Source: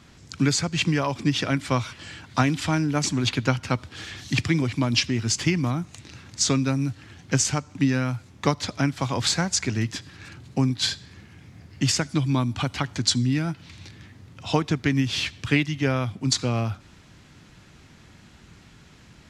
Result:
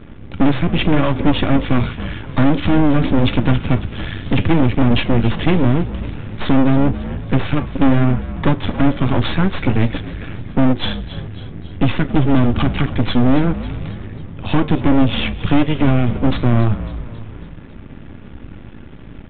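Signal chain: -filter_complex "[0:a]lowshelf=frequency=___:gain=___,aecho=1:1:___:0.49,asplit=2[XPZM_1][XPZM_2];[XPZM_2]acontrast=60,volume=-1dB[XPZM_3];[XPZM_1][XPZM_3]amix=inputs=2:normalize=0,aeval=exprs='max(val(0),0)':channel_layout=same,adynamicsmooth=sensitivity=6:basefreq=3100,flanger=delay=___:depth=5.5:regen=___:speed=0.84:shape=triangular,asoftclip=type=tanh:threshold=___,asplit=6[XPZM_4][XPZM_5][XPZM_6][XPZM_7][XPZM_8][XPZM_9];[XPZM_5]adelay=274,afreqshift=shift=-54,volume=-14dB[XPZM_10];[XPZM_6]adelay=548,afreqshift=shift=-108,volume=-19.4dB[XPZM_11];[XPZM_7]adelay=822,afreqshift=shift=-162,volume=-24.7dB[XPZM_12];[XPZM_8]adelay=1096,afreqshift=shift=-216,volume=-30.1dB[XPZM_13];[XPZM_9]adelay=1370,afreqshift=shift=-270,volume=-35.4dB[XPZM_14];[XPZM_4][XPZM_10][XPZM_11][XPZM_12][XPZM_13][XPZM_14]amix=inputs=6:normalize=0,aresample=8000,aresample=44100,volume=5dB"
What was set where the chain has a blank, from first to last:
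430, 11.5, 3.5, 6.4, -79, -9dB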